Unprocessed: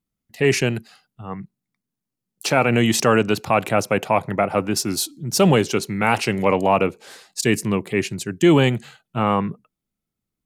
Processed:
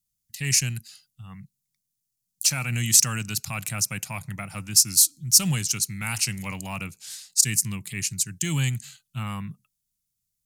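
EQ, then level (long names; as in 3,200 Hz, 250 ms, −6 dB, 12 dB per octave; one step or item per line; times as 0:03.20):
dynamic equaliser 3,400 Hz, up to −8 dB, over −43 dBFS, Q 2.2
drawn EQ curve 140 Hz 0 dB, 440 Hz −26 dB, 6,300 Hz +13 dB
−3.5 dB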